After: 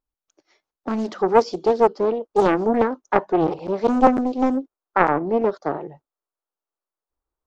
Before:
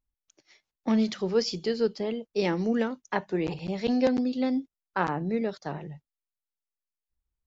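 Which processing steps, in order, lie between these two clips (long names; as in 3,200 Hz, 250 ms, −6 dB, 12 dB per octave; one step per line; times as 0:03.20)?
flat-topped bell 630 Hz +9.5 dB 2.7 octaves, from 0:01.04 +16 dB
highs frequency-modulated by the lows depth 0.64 ms
level −4.5 dB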